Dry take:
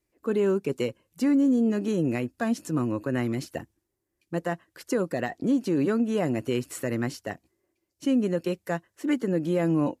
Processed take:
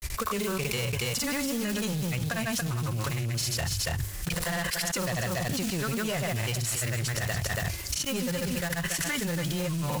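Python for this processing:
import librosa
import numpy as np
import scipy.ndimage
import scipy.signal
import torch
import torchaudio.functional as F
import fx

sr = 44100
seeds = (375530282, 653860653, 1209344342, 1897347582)

p1 = fx.block_float(x, sr, bits=5)
p2 = fx.low_shelf(p1, sr, hz=240.0, db=12.0)
p3 = fx.rider(p2, sr, range_db=10, speed_s=0.5)
p4 = p2 + F.gain(torch.from_numpy(p3), 2.0).numpy()
p5 = fx.tone_stack(p4, sr, knobs='10-0-10')
p6 = 10.0 ** (-30.5 / 20.0) * np.tanh(p5 / 10.0 ** (-30.5 / 20.0))
p7 = fx.transient(p6, sr, attack_db=6, sustain_db=0)
p8 = fx.granulator(p7, sr, seeds[0], grain_ms=100.0, per_s=20.0, spray_ms=100.0, spread_st=0)
p9 = fx.hum_notches(p8, sr, base_hz=50, count=2)
p10 = p9 + fx.echo_single(p9, sr, ms=282, db=-13.5, dry=0)
p11 = fx.env_flatten(p10, sr, amount_pct=100)
y = F.gain(torch.from_numpy(p11), 1.0).numpy()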